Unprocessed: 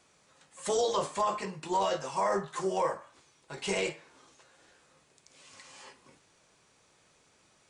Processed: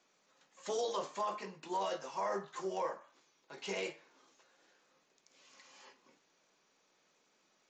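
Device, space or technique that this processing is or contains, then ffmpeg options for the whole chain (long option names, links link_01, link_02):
Bluetooth headset: -af "highpass=frequency=190:width=0.5412,highpass=frequency=190:width=1.3066,aresample=16000,aresample=44100,volume=-7.5dB" -ar 16000 -c:a sbc -b:a 64k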